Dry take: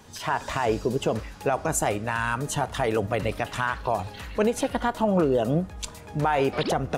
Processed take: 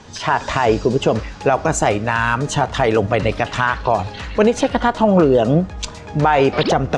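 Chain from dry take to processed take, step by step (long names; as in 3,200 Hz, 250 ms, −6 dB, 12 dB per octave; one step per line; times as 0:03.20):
low-pass filter 6,800 Hz 24 dB per octave
level +9 dB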